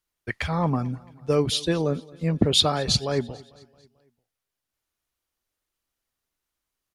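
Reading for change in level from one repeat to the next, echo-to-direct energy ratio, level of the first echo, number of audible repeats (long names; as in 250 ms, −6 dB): −5.5 dB, −21.5 dB, −23.0 dB, 3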